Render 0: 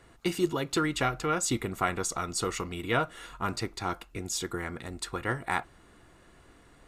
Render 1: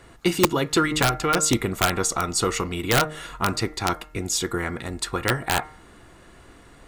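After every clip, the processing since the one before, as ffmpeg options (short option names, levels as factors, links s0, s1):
-af "bandreject=f=153.4:t=h:w=4,bandreject=f=306.8:t=h:w=4,bandreject=f=460.2:t=h:w=4,bandreject=f=613.6:t=h:w=4,bandreject=f=767:t=h:w=4,bandreject=f=920.4:t=h:w=4,bandreject=f=1073.8:t=h:w=4,bandreject=f=1227.2:t=h:w=4,bandreject=f=1380.6:t=h:w=4,bandreject=f=1534:t=h:w=4,bandreject=f=1687.4:t=h:w=4,bandreject=f=1840.8:t=h:w=4,bandreject=f=1994.2:t=h:w=4,bandreject=f=2147.6:t=h:w=4,aeval=exprs='(mod(7.5*val(0)+1,2)-1)/7.5':c=same,volume=2.51"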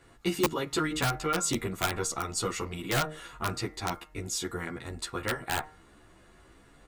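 -filter_complex "[0:a]asplit=2[s0][s1];[s1]adelay=11.6,afreqshift=2.7[s2];[s0][s2]amix=inputs=2:normalize=1,volume=0.562"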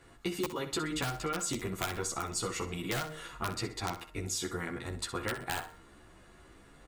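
-af "acompressor=threshold=0.0282:ratio=6,aecho=1:1:63|126|189:0.251|0.0829|0.0274"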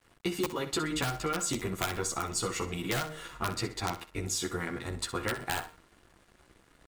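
-af "aeval=exprs='sgn(val(0))*max(abs(val(0))-0.0015,0)':c=same,volume=1.41"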